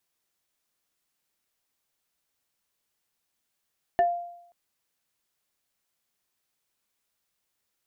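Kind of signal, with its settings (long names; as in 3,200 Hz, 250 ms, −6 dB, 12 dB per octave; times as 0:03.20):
two-operator FM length 0.53 s, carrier 696 Hz, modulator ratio 1.55, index 0.53, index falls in 0.18 s exponential, decay 0.76 s, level −16 dB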